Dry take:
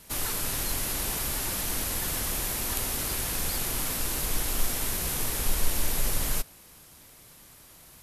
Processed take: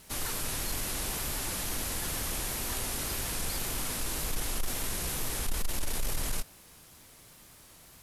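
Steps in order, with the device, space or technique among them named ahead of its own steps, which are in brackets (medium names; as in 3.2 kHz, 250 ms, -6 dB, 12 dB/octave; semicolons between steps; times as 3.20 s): compact cassette (saturation -22 dBFS, distortion -13 dB; low-pass 12 kHz 12 dB/octave; wow and flutter; white noise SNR 35 dB); trim -1.5 dB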